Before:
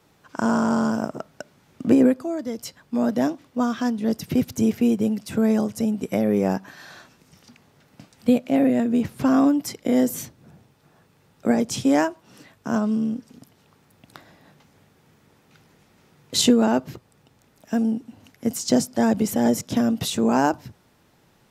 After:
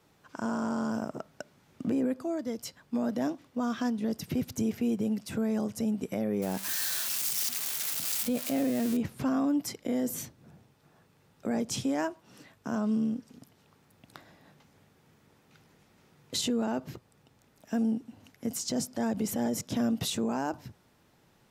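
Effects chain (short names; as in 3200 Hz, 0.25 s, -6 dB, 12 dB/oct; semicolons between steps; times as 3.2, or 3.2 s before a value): 6.42–8.97 switching spikes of -17 dBFS; limiter -16.5 dBFS, peak gain reduction 10.5 dB; gain -5 dB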